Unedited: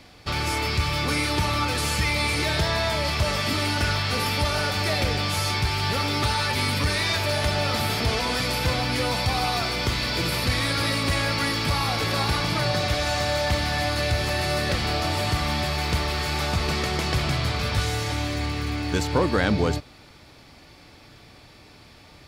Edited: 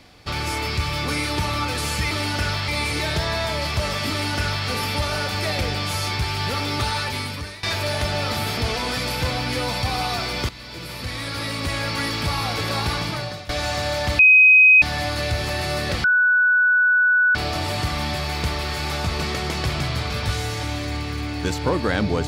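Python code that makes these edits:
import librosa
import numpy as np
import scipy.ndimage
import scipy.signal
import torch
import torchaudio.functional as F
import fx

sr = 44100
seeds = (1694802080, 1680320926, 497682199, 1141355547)

y = fx.edit(x, sr, fx.duplicate(start_s=3.53, length_s=0.57, to_s=2.11),
    fx.fade_out_to(start_s=6.39, length_s=0.67, floor_db=-18.5),
    fx.fade_in_from(start_s=9.92, length_s=1.59, floor_db=-15.0),
    fx.fade_out_to(start_s=12.41, length_s=0.51, floor_db=-17.5),
    fx.insert_tone(at_s=13.62, length_s=0.63, hz=2520.0, db=-8.0),
    fx.insert_tone(at_s=14.84, length_s=1.31, hz=1480.0, db=-13.5), tone=tone)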